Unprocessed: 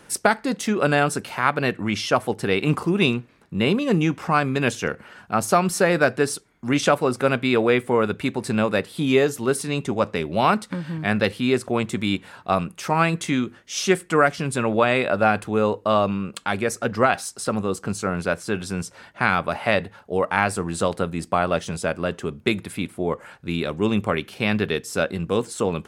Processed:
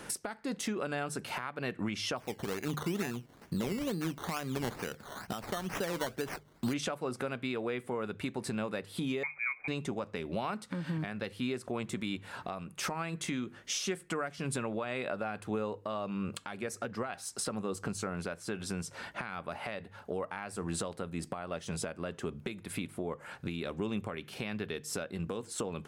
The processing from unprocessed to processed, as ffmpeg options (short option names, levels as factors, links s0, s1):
-filter_complex "[0:a]asplit=3[s0][s1][s2];[s0]afade=t=out:st=2.17:d=0.02[s3];[s1]acrusher=samples=14:mix=1:aa=0.000001:lfo=1:lforange=8.4:lforate=2.2,afade=t=in:st=2.17:d=0.02,afade=t=out:st=6.72:d=0.02[s4];[s2]afade=t=in:st=6.72:d=0.02[s5];[s3][s4][s5]amix=inputs=3:normalize=0,asettb=1/sr,asplit=3[s6][s7][s8];[s6]atrim=end=9.234[s9];[s7]atrim=start=9.23:end=9.68,asetpts=PTS-STARTPTS,afade=t=in:d=0.004:c=qsin,afade=t=out:st=0.446:d=0.004:c=qsin,lowpass=f=2200:t=q:w=0.5098,lowpass=f=2200:t=q:w=0.6013,lowpass=f=2200:t=q:w=0.9,lowpass=f=2200:t=q:w=2.563,afreqshift=-2600[s10];[s8]atrim=start=9.676[s11];[s9][s10]acrossfade=d=0.004:c1=hsin:c2=qsin[s12];[s12][s11]acrossfade=d=0.004:c1=qsin:c2=hsin,bandreject=f=50:t=h:w=6,bandreject=f=100:t=h:w=6,bandreject=f=150:t=h:w=6,acompressor=threshold=0.0251:ratio=6,alimiter=level_in=1.41:limit=0.0631:level=0:latency=1:release=456,volume=0.708,volume=1.41"